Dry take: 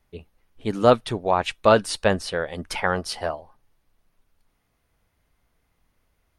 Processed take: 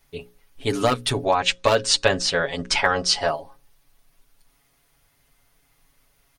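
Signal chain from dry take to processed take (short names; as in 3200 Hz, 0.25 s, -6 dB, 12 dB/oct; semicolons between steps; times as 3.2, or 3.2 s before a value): 1.25–3.28 steep low-pass 7800 Hz 36 dB/oct; overloaded stage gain 7.5 dB; compressor 6:1, threshold -19 dBFS, peak gain reduction 8.5 dB; high shelf 2700 Hz +10 dB; notches 60/120/180/240/300/360/420/480/540 Hz; comb 7.2 ms, depth 84%; gain +2 dB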